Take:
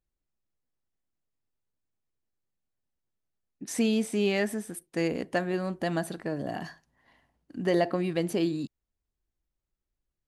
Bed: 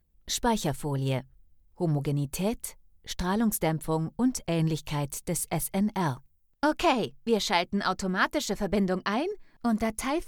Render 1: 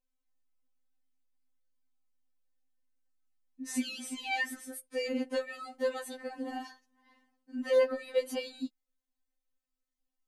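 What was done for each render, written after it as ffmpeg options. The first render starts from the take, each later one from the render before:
ffmpeg -i in.wav -af "afftfilt=real='re*3.46*eq(mod(b,12),0)':imag='im*3.46*eq(mod(b,12),0)':win_size=2048:overlap=0.75" out.wav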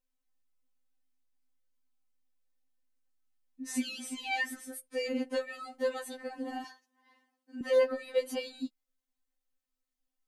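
ffmpeg -i in.wav -filter_complex "[0:a]asettb=1/sr,asplit=3[link_01][link_02][link_03];[link_01]atrim=end=6.644[link_04];[link_02]atrim=start=6.64:end=7.61,asetpts=PTS-STARTPTS,afade=type=in:duration=0.004:curve=qsin,afade=type=out:start_time=0.966:duration=0.004:curve=qsin,highpass=300[link_05];[link_03]atrim=start=7.606[link_06];[link_04][link_05]acrossfade=duration=0.004:curve1=hsin:curve2=qsin[link_07];[link_07][link_06]acrossfade=duration=0.004:curve1=qsin:curve2=hsin" out.wav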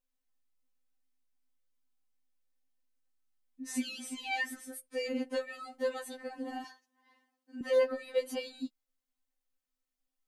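ffmpeg -i in.wav -af "volume=-1.5dB" out.wav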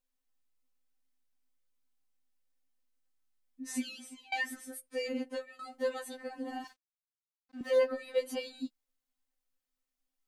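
ffmpeg -i in.wav -filter_complex "[0:a]asettb=1/sr,asplit=3[link_01][link_02][link_03];[link_01]atrim=end=6.674[link_04];[link_02]atrim=start=6.67:end=7.75,asetpts=PTS-STARTPTS,afade=type=in:duration=0.004:curve=qsin,afade=type=out:start_time=1.076:duration=0.004:curve=qsin,aeval=exprs='sgn(val(0))*max(abs(val(0))-0.00158,0)':channel_layout=same[link_05];[link_03]atrim=start=7.746[link_06];[link_04][link_05]acrossfade=duration=0.004:curve1=hsin:curve2=qsin[link_07];[link_07][link_06]acrossfade=duration=0.004:curve1=qsin:curve2=hsin,asplit=3[link_08][link_09][link_10];[link_08]atrim=end=4.32,asetpts=PTS-STARTPTS,afade=type=out:start_time=3.71:duration=0.61:silence=0.0749894[link_11];[link_09]atrim=start=4.32:end=5.59,asetpts=PTS-STARTPTS,afade=type=in:duration=0.004:curve=hsin:silence=0.0749894,afade=type=out:start_time=0.58:duration=0.69:curve=qsin:silence=0.223872[link_12];[link_10]atrim=start=5.59,asetpts=PTS-STARTPTS,afade=type=in:duration=0.004:curve=hsin:silence=0.223872[link_13];[link_11][link_12][link_13]concat=n=3:v=0:a=1" out.wav

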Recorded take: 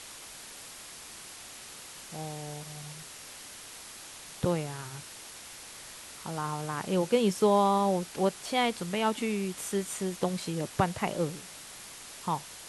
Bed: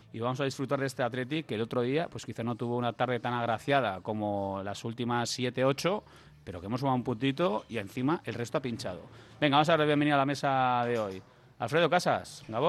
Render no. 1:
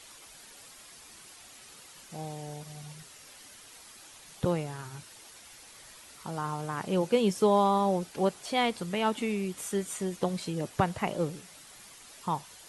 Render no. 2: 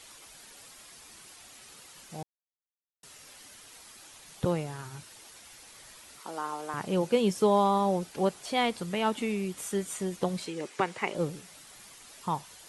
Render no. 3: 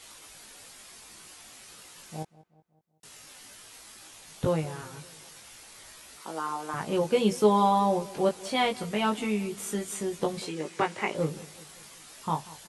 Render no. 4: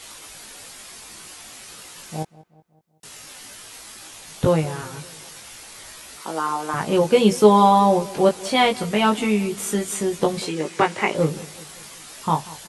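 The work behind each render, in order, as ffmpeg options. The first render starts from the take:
ffmpeg -i in.wav -af "afftdn=noise_reduction=8:noise_floor=-47" out.wav
ffmpeg -i in.wav -filter_complex "[0:a]asettb=1/sr,asplit=3[link_01][link_02][link_03];[link_01]atrim=end=6.204[link_04];[link_02]atrim=start=6.2:end=6.74,asetpts=PTS-STARTPTS,afade=type=in:duration=0.004:curve=qsin,afade=type=out:start_time=0.536:duration=0.004:curve=qsin,highpass=frequency=270:width=0.5412,highpass=frequency=270:width=1.3066[link_05];[link_03]atrim=start=6.736[link_06];[link_04][link_05]acrossfade=duration=0.004:curve1=hsin:curve2=qsin[link_07];[link_07][link_06]acrossfade=duration=0.004:curve1=qsin:curve2=hsin,asettb=1/sr,asplit=3[link_08][link_09][link_10];[link_08]atrim=end=10.464[link_11];[link_09]atrim=start=10.46:end=11.15,asetpts=PTS-STARTPTS,afade=type=in:duration=0.004:curve=qsin,afade=type=out:start_time=0.686:duration=0.004:curve=qsin,highpass=310,equalizer=frequency=390:width_type=q:width=4:gain=5,equalizer=frequency=660:width_type=q:width=4:gain=-7,equalizer=frequency=2200:width_type=q:width=4:gain=7,lowpass=frequency=9400:width=0.5412,lowpass=frequency=9400:width=1.3066[link_12];[link_10]atrim=start=11.146[link_13];[link_11][link_12]acrossfade=duration=0.004:curve1=hsin:curve2=qsin[link_14];[link_14][link_13]acrossfade=duration=0.004:curve1=qsin:curve2=hsin,asplit=3[link_15][link_16][link_17];[link_15]atrim=end=2.23,asetpts=PTS-STARTPTS,afade=type=out:start_time=2.226:duration=0.004:curve=hsin[link_18];[link_16]atrim=start=2.23:end=3.03,asetpts=PTS-STARTPTS,volume=0[link_19];[link_17]atrim=start=3.03,asetpts=PTS-STARTPTS,afade=type=in:duration=0.004:curve=hsin[link_20];[link_18][link_19][link_20]concat=n=3:v=0:a=1" out.wav
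ffmpeg -i in.wav -filter_complex "[0:a]asplit=2[link_01][link_02];[link_02]adelay=19,volume=-3dB[link_03];[link_01][link_03]amix=inputs=2:normalize=0,asplit=2[link_04][link_05];[link_05]adelay=188,lowpass=frequency=2000:poles=1,volume=-19dB,asplit=2[link_06][link_07];[link_07]adelay=188,lowpass=frequency=2000:poles=1,volume=0.53,asplit=2[link_08][link_09];[link_09]adelay=188,lowpass=frequency=2000:poles=1,volume=0.53,asplit=2[link_10][link_11];[link_11]adelay=188,lowpass=frequency=2000:poles=1,volume=0.53[link_12];[link_04][link_06][link_08][link_10][link_12]amix=inputs=5:normalize=0" out.wav
ffmpeg -i in.wav -af "volume=8.5dB" out.wav

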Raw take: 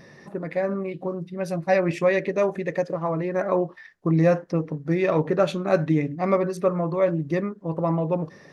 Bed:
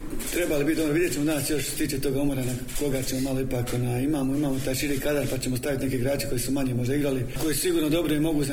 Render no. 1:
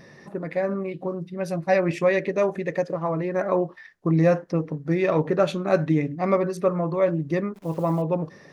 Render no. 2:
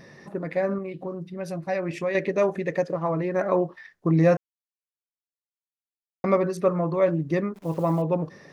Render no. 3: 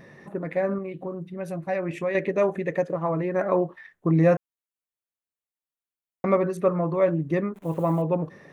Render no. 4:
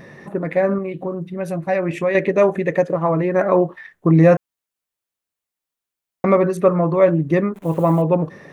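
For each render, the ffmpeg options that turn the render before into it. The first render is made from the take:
ffmpeg -i in.wav -filter_complex "[0:a]asettb=1/sr,asplit=3[link_01][link_02][link_03];[link_01]atrim=end=7.544[link_04];[link_02]atrim=start=7.54:end=8.02,asetpts=PTS-STARTPTS,afade=type=in:duration=0.004:curve=qsin,afade=type=out:start_time=0.476:duration=0.004:curve=qsin,acrusher=bits=9:dc=4:mix=0:aa=0.000001[link_05];[link_03]atrim=start=8.016[link_06];[link_04][link_05]acrossfade=duration=0.004:curve1=hsin:curve2=qsin[link_07];[link_07][link_06]acrossfade=duration=0.004:curve1=qsin:curve2=hsin" out.wav
ffmpeg -i in.wav -filter_complex "[0:a]asettb=1/sr,asplit=3[link_01][link_02][link_03];[link_01]atrim=end=0.784[link_04];[link_02]atrim=start=0.78:end=2.15,asetpts=PTS-STARTPTS,afade=type=in:duration=0.004:curve=qsin,afade=type=out:start_time=1.366:duration=0.004:curve=qsin,acompressor=threshold=-35dB:ratio=1.5:attack=3.2:release=140:knee=1:detection=peak[link_05];[link_03]atrim=start=2.146[link_06];[link_04][link_05]acrossfade=duration=0.004:curve1=hsin:curve2=qsin[link_07];[link_07][link_06]acrossfade=duration=0.004:curve1=qsin:curve2=hsin,asplit=3[link_08][link_09][link_10];[link_08]atrim=end=4.37,asetpts=PTS-STARTPTS,afade=type=out:start_time=4.366:duration=0.004:curve=hsin[link_11];[link_09]atrim=start=4.37:end=6.24,asetpts=PTS-STARTPTS,volume=0[link_12];[link_10]atrim=start=6.24,asetpts=PTS-STARTPTS,afade=type=in:duration=0.004:curve=hsin[link_13];[link_11][link_12][link_13]concat=n=3:v=0:a=1" out.wav
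ffmpeg -i in.wav -af "equalizer=frequency=5000:width_type=o:width=0.58:gain=-12" out.wav
ffmpeg -i in.wav -af "volume=7.5dB,alimiter=limit=-3dB:level=0:latency=1" out.wav

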